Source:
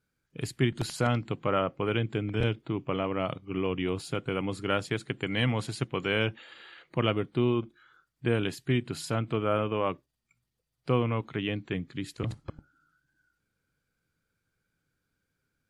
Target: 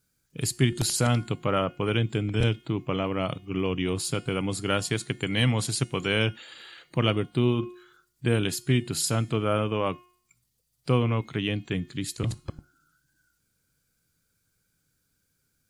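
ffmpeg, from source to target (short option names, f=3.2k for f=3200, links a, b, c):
-af "bass=f=250:g=4,treble=f=4k:g=14,bandreject=f=358.3:t=h:w=4,bandreject=f=716.6:t=h:w=4,bandreject=f=1.0749k:t=h:w=4,bandreject=f=1.4332k:t=h:w=4,bandreject=f=1.7915k:t=h:w=4,bandreject=f=2.1498k:t=h:w=4,bandreject=f=2.5081k:t=h:w=4,bandreject=f=2.8664k:t=h:w=4,bandreject=f=3.2247k:t=h:w=4,bandreject=f=3.583k:t=h:w=4,bandreject=f=3.9413k:t=h:w=4,bandreject=f=4.2996k:t=h:w=4,bandreject=f=4.6579k:t=h:w=4,bandreject=f=5.0162k:t=h:w=4,bandreject=f=5.3745k:t=h:w=4,bandreject=f=5.7328k:t=h:w=4,bandreject=f=6.0911k:t=h:w=4,bandreject=f=6.4494k:t=h:w=4,bandreject=f=6.8077k:t=h:w=4,bandreject=f=7.166k:t=h:w=4,bandreject=f=7.5243k:t=h:w=4,bandreject=f=7.8826k:t=h:w=4,bandreject=f=8.2409k:t=h:w=4,bandreject=f=8.5992k:t=h:w=4,bandreject=f=8.9575k:t=h:w=4,bandreject=f=9.3158k:t=h:w=4,bandreject=f=9.6741k:t=h:w=4,bandreject=f=10.0324k:t=h:w=4,bandreject=f=10.3907k:t=h:w=4,bandreject=f=10.749k:t=h:w=4,volume=1dB"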